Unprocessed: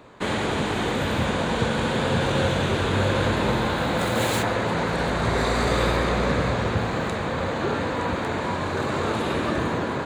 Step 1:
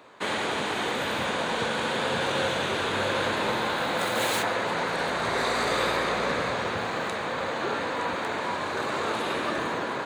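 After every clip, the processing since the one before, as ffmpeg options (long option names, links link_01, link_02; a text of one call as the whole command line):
ffmpeg -i in.wav -af "highpass=frequency=590:poles=1,bandreject=frequency=7300:width=17" out.wav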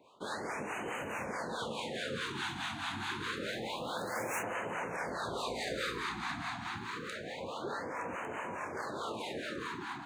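ffmpeg -i in.wav -filter_complex "[0:a]acrossover=split=640[link_01][link_02];[link_01]aeval=exprs='val(0)*(1-0.7/2+0.7/2*cos(2*PI*4.7*n/s))':channel_layout=same[link_03];[link_02]aeval=exprs='val(0)*(1-0.7/2-0.7/2*cos(2*PI*4.7*n/s))':channel_layout=same[link_04];[link_03][link_04]amix=inputs=2:normalize=0,afftfilt=real='re*(1-between(b*sr/1024,460*pow(4400/460,0.5+0.5*sin(2*PI*0.27*pts/sr))/1.41,460*pow(4400/460,0.5+0.5*sin(2*PI*0.27*pts/sr))*1.41))':imag='im*(1-between(b*sr/1024,460*pow(4400/460,0.5+0.5*sin(2*PI*0.27*pts/sr))/1.41,460*pow(4400/460,0.5+0.5*sin(2*PI*0.27*pts/sr))*1.41))':win_size=1024:overlap=0.75,volume=-6.5dB" out.wav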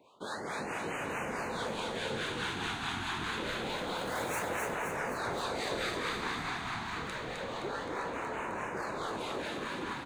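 ffmpeg -i in.wav -filter_complex "[0:a]asplit=9[link_01][link_02][link_03][link_04][link_05][link_06][link_07][link_08][link_09];[link_02]adelay=260,afreqshift=-37,volume=-3dB[link_10];[link_03]adelay=520,afreqshift=-74,volume=-7.9dB[link_11];[link_04]adelay=780,afreqshift=-111,volume=-12.8dB[link_12];[link_05]adelay=1040,afreqshift=-148,volume=-17.6dB[link_13];[link_06]adelay=1300,afreqshift=-185,volume=-22.5dB[link_14];[link_07]adelay=1560,afreqshift=-222,volume=-27.4dB[link_15];[link_08]adelay=1820,afreqshift=-259,volume=-32.3dB[link_16];[link_09]adelay=2080,afreqshift=-296,volume=-37.2dB[link_17];[link_01][link_10][link_11][link_12][link_13][link_14][link_15][link_16][link_17]amix=inputs=9:normalize=0" out.wav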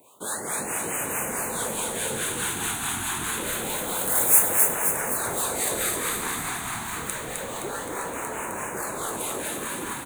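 ffmpeg -i in.wav -af "aexciter=amount=13.1:drive=7:freq=7500,volume=4.5dB" out.wav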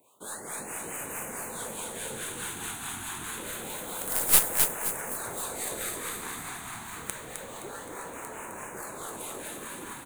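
ffmpeg -i in.wav -af "aeval=exprs='0.891*(cos(1*acos(clip(val(0)/0.891,-1,1)))-cos(1*PI/2))+0.0794*(cos(3*acos(clip(val(0)/0.891,-1,1)))-cos(3*PI/2))+0.251*(cos(6*acos(clip(val(0)/0.891,-1,1)))-cos(6*PI/2))+0.0398*(cos(7*acos(clip(val(0)/0.891,-1,1)))-cos(7*PI/2))+0.126*(cos(8*acos(clip(val(0)/0.891,-1,1)))-cos(8*PI/2))':channel_layout=same,volume=-1dB" out.wav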